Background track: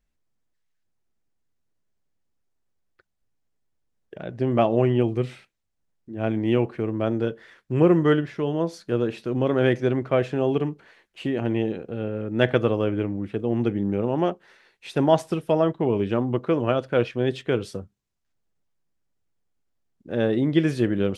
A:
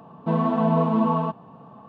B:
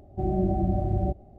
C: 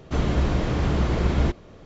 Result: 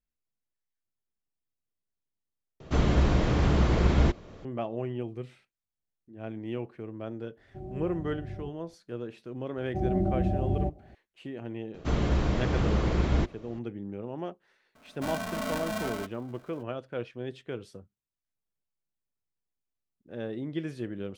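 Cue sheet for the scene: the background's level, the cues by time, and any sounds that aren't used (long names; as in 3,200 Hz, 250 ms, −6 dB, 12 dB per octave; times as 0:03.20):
background track −13.5 dB
0:02.60: overwrite with C −1 dB
0:07.37: mix in B −14 dB + comb filter 7.4 ms, depth 46%
0:09.57: mix in B −2 dB + high-pass filter 44 Hz
0:11.74: mix in C −4 dB
0:14.75: mix in A −13 dB + ring modulator with a square carrier 430 Hz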